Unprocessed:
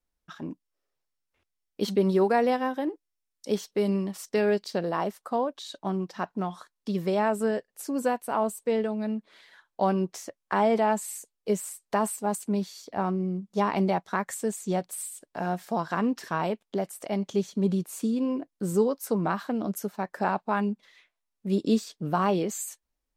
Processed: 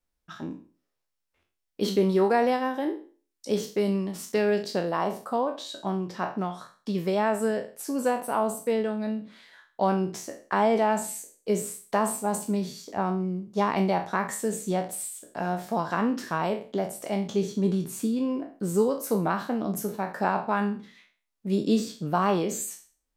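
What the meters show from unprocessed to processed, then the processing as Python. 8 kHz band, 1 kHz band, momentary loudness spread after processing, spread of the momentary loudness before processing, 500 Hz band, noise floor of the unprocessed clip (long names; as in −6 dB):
+2.0 dB, +1.0 dB, 9 LU, 10 LU, +1.0 dB, −83 dBFS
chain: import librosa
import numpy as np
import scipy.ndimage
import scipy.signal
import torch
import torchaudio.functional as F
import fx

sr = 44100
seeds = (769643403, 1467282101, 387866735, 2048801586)

y = fx.spec_trails(x, sr, decay_s=0.39)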